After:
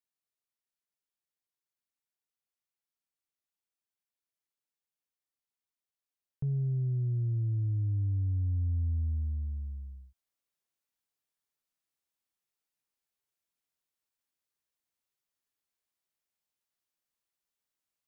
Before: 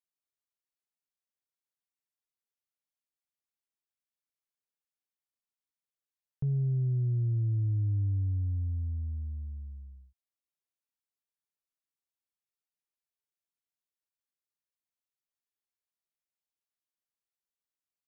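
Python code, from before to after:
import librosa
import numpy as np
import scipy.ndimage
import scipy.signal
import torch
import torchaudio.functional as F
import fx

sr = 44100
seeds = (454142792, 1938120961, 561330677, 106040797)

y = fx.rider(x, sr, range_db=4, speed_s=0.5)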